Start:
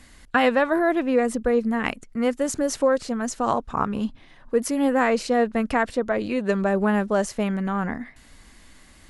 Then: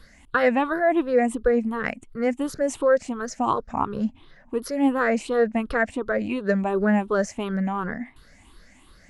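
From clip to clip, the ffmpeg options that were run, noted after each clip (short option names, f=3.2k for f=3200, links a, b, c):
-af "afftfilt=real='re*pow(10,14/40*sin(2*PI*(0.61*log(max(b,1)*sr/1024/100)/log(2)-(2.8)*(pts-256)/sr)))':imag='im*pow(10,14/40*sin(2*PI*(0.61*log(max(b,1)*sr/1024/100)/log(2)-(2.8)*(pts-256)/sr)))':win_size=1024:overlap=0.75,highshelf=f=4.4k:g=-6,volume=-3dB"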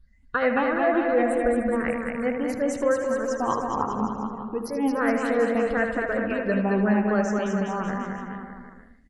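-filter_complex "[0:a]asplit=2[a][b];[b]aecho=0:1:77|154|231|308|385|462:0.422|0.207|0.101|0.0496|0.0243|0.0119[c];[a][c]amix=inputs=2:normalize=0,afftdn=nr=23:nf=-43,asplit=2[d][e];[e]aecho=0:1:220|418|596.2|756.6|900.9:0.631|0.398|0.251|0.158|0.1[f];[d][f]amix=inputs=2:normalize=0,volume=-3.5dB"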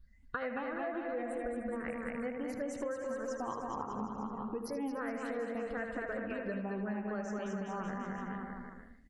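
-af "acompressor=threshold=-32dB:ratio=6,volume=-3.5dB"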